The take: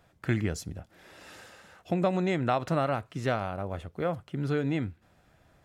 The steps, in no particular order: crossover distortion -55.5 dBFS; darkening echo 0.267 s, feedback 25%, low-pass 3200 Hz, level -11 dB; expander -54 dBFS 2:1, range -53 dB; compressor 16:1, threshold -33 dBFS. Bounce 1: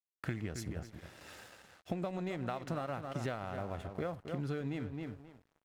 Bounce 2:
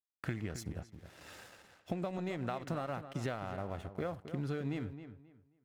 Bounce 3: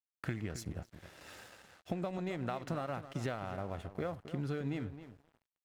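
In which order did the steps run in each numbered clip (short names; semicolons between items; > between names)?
expander > darkening echo > compressor > crossover distortion; compressor > crossover distortion > expander > darkening echo; compressor > expander > darkening echo > crossover distortion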